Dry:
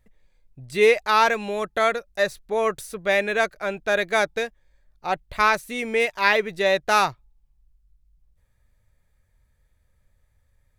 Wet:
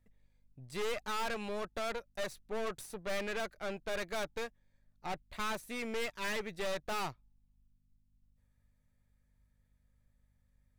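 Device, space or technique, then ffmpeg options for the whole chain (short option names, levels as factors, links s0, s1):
valve amplifier with mains hum: -filter_complex "[0:a]asettb=1/sr,asplit=3[s0][s1][s2];[s0]atrim=end=6.134[s3];[s1]atrim=start=6.13:end=6.55,asetpts=PTS-STARTPTS,afade=t=in:d=0.004:c=qsin,afade=t=out:st=0.416:d=0.004:c=qsin,equalizer=f=750:t=o:w=0.55:g=-13.5[s4];[s2]atrim=start=6.546[s5];[s3][s4]acrossfade=d=0.004:c1=hsin:c2=qsin[s6];[s6][s5]acrossfade=d=0.004:c1=qsin:c2=hsin,aeval=exprs='(tanh(25.1*val(0)+0.75)-tanh(0.75))/25.1':c=same,aeval=exprs='val(0)+0.000447*(sin(2*PI*50*n/s)+sin(2*PI*2*50*n/s)/2+sin(2*PI*3*50*n/s)/3+sin(2*PI*4*50*n/s)/4+sin(2*PI*5*50*n/s)/5)':c=same,volume=0.501"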